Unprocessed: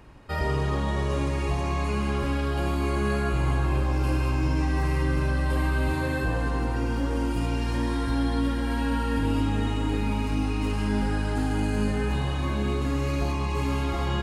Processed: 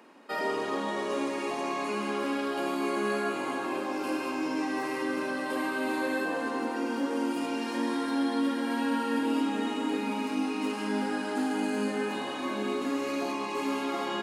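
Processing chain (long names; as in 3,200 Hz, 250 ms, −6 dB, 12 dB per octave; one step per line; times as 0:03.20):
elliptic high-pass filter 230 Hz, stop band 70 dB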